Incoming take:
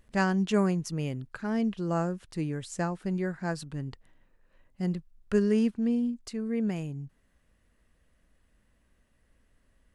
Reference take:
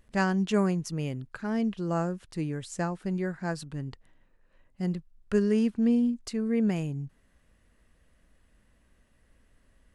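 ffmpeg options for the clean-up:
-af "asetnsamples=n=441:p=0,asendcmd='5.71 volume volume 3.5dB',volume=0dB"

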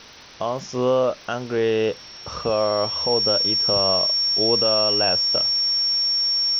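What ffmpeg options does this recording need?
-af "adeclick=t=4,bandreject=f=5.5k:w=30,afwtdn=0.01"

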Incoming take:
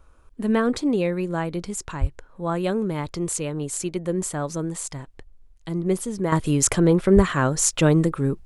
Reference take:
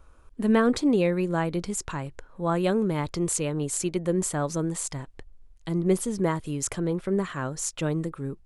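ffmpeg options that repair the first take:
-filter_complex "[0:a]asplit=3[a][b][c];[a]afade=t=out:st=2:d=0.02[d];[b]highpass=f=140:w=0.5412,highpass=f=140:w=1.3066,afade=t=in:st=2:d=0.02,afade=t=out:st=2.12:d=0.02[e];[c]afade=t=in:st=2.12:d=0.02[f];[d][e][f]amix=inputs=3:normalize=0,asplit=3[g][h][i];[g]afade=t=out:st=7.15:d=0.02[j];[h]highpass=f=140:w=0.5412,highpass=f=140:w=1.3066,afade=t=in:st=7.15:d=0.02,afade=t=out:st=7.27:d=0.02[k];[i]afade=t=in:st=7.27:d=0.02[l];[j][k][l]amix=inputs=3:normalize=0,asetnsamples=n=441:p=0,asendcmd='6.32 volume volume -10dB',volume=0dB"

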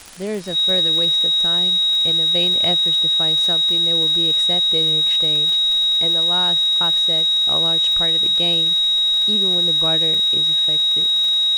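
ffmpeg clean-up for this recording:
-af "adeclick=t=4,bandreject=f=3.8k:w=30,afwtdn=0.01"

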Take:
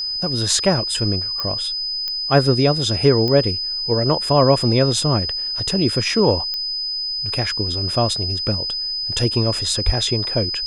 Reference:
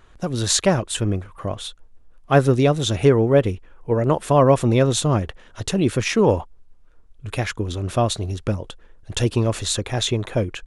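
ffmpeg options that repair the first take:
-filter_complex "[0:a]adeclick=t=4,bandreject=f=5k:w=30,asplit=3[a][b][c];[a]afade=t=out:st=9.85:d=0.02[d];[b]highpass=f=140:w=0.5412,highpass=f=140:w=1.3066,afade=t=in:st=9.85:d=0.02,afade=t=out:st=9.97:d=0.02[e];[c]afade=t=in:st=9.97:d=0.02[f];[d][e][f]amix=inputs=3:normalize=0"

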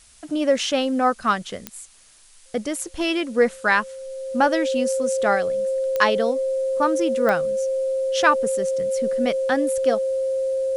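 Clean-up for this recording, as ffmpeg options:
-af "adeclick=t=4,bandreject=f=530:w=30,afftdn=nr=22:nf=-45"

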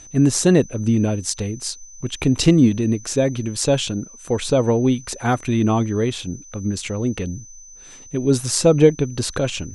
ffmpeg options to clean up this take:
-af "bandreject=f=6.1k:w=30"

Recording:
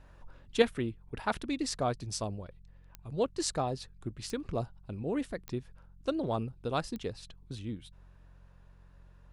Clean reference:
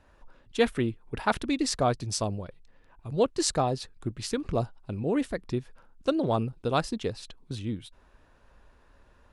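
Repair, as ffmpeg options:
-af "adeclick=t=4,bandreject=f=45.1:t=h:w=4,bandreject=f=90.2:t=h:w=4,bandreject=f=135.3:t=h:w=4,bandreject=f=180.4:t=h:w=4,asetnsamples=n=441:p=0,asendcmd='0.62 volume volume 6dB',volume=0dB"

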